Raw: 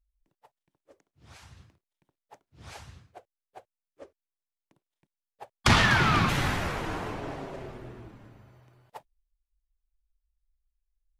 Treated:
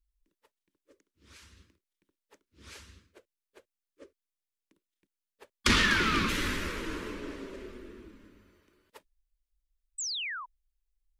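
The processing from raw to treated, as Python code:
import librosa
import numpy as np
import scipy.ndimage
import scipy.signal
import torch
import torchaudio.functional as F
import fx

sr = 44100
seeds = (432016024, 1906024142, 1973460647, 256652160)

y = fx.spec_paint(x, sr, seeds[0], shape='fall', start_s=9.98, length_s=0.48, low_hz=930.0, high_hz=8300.0, level_db=-34.0)
y = fx.fixed_phaser(y, sr, hz=310.0, stages=4)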